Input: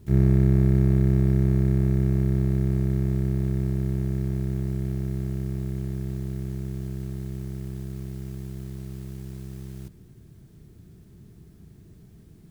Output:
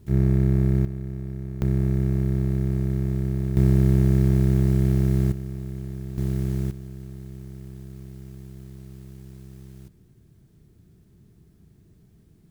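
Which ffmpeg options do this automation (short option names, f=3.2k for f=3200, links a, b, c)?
-af "asetnsamples=n=441:p=0,asendcmd='0.85 volume volume -12dB;1.62 volume volume -0.5dB;3.57 volume volume 8dB;5.32 volume volume -3dB;6.18 volume volume 6dB;6.71 volume volume -5.5dB',volume=-1dB"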